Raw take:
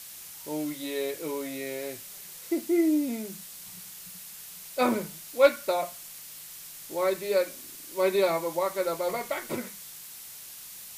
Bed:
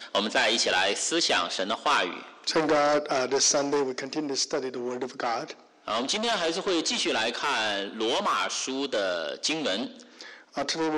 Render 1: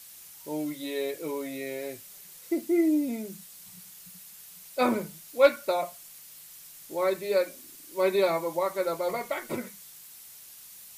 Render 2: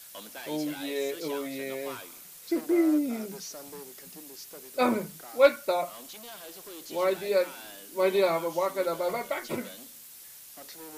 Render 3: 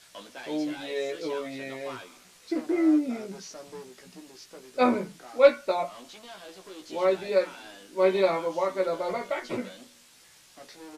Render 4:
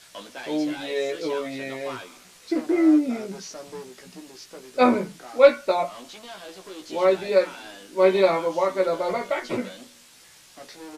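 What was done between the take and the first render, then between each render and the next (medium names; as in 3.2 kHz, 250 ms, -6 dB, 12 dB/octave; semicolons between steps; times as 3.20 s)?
noise reduction 6 dB, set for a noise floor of -45 dBFS
add bed -19.5 dB
distance through air 78 m; doubling 16 ms -4.5 dB
trim +4.5 dB; peak limiter -3 dBFS, peak gain reduction 2 dB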